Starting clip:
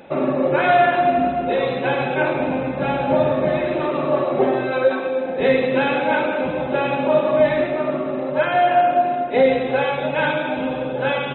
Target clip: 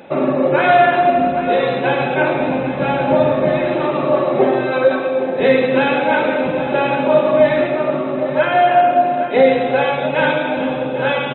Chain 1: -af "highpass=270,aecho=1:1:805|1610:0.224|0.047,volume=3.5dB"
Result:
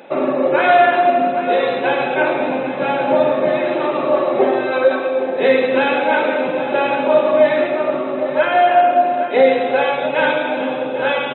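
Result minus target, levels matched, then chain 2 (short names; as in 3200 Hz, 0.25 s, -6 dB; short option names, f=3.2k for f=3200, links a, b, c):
125 Hz band -10.0 dB
-af "highpass=84,aecho=1:1:805|1610:0.224|0.047,volume=3.5dB"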